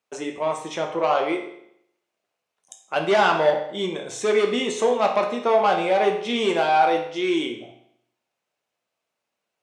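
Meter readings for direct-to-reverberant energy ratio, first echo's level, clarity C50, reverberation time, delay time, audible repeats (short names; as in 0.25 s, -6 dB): 2.0 dB, none, 7.5 dB, 0.70 s, none, none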